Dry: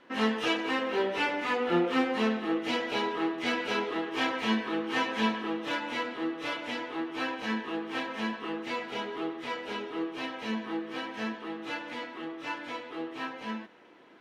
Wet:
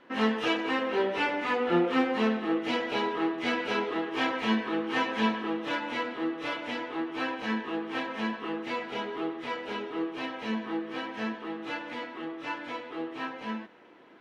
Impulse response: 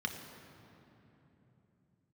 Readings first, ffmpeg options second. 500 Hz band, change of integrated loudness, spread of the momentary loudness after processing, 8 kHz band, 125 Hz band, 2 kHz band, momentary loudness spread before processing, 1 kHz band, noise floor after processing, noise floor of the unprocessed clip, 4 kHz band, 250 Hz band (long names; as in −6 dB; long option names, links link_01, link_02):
+1.5 dB, +1.0 dB, 10 LU, can't be measured, +1.5 dB, +0.5 dB, 9 LU, +1.0 dB, −44 dBFS, −45 dBFS, −1.0 dB, +1.5 dB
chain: -af "highshelf=frequency=4800:gain=-8,volume=1.5dB"